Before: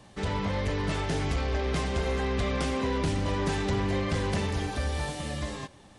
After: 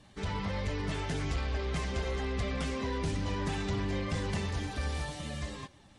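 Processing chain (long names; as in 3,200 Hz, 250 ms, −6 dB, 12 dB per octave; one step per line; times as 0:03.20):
spectral magnitudes quantised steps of 15 dB
low-pass filter 10,000 Hz 12 dB per octave
parametric band 490 Hz −3.5 dB 2.4 octaves
level −3 dB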